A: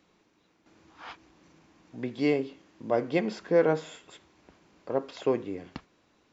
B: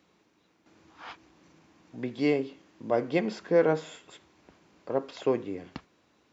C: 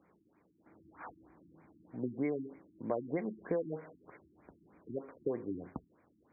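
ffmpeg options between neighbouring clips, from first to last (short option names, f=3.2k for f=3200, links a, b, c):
-af "highpass=58"
-af "acompressor=threshold=-29dB:ratio=16,afftfilt=real='re*lt(b*sr/1024,340*pow(2500/340,0.5+0.5*sin(2*PI*3.2*pts/sr)))':imag='im*lt(b*sr/1024,340*pow(2500/340,0.5+0.5*sin(2*PI*3.2*pts/sr)))':win_size=1024:overlap=0.75,volume=-1dB"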